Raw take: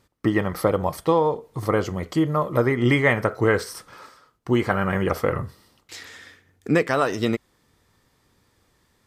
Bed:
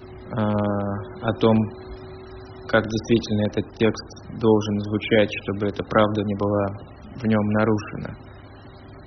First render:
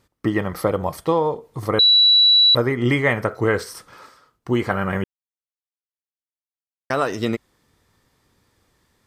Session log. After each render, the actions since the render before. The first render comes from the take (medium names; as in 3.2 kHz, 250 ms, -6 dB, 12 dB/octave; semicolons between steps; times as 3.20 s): 1.79–2.55 s: bleep 3.93 kHz -10 dBFS; 5.04–6.90 s: mute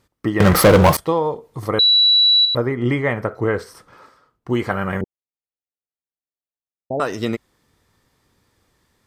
0.40–0.97 s: waveshaping leveller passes 5; 2.45–4.50 s: treble shelf 2.3 kHz -9 dB; 5.01–7.00 s: steep low-pass 850 Hz 96 dB/octave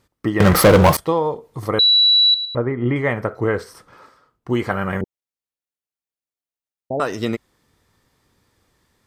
2.34–2.96 s: distance through air 380 m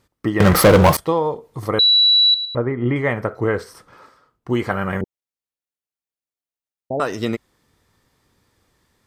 no audible change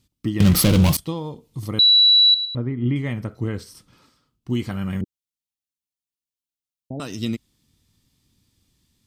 high-order bell 880 Hz -14.5 dB 2.7 oct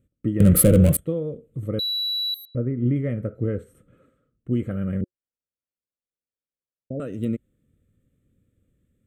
local Wiener filter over 9 samples; FFT filter 360 Hz 0 dB, 540 Hz +9 dB, 920 Hz -24 dB, 1.3 kHz -3 dB, 5.7 kHz -15 dB, 9.3 kHz +8 dB, 14 kHz +1 dB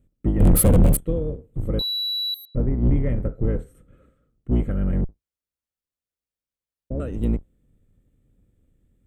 octave divider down 2 oct, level +4 dB; saturation -9 dBFS, distortion -12 dB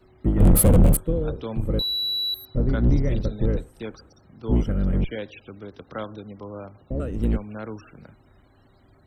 add bed -15 dB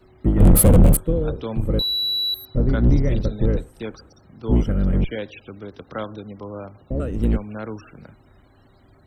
trim +3 dB